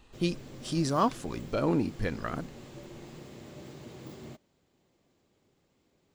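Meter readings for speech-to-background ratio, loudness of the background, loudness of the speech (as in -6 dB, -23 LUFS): 15.5 dB, -47.0 LUFS, -31.5 LUFS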